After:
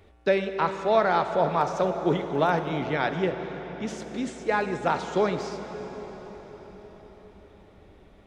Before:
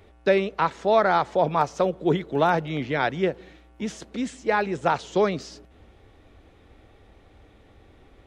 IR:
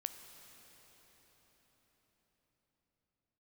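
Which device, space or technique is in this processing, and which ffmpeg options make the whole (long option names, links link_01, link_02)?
cathedral: -filter_complex "[1:a]atrim=start_sample=2205[link_01];[0:a][link_01]afir=irnorm=-1:irlink=0,asettb=1/sr,asplit=3[link_02][link_03][link_04];[link_02]atrim=end=3.324[link_05];[link_03]atrim=start=3.32:end=3.87,asetpts=PTS-STARTPTS,afade=type=in:duration=0.004:curve=qsin,afade=type=out:start_time=0.546:duration=0.004:curve=qsin,lowpass=frequency=7600:width=0.5412,lowpass=frequency=7600:width=1.3066[link_06];[link_04]atrim=start=3.866[link_07];[link_05][link_06]acrossfade=duration=0.004:curve1=hsin:curve2=qsin[link_08];[link_08][link_07]acrossfade=duration=0.004:curve1=qsin:curve2=hsin"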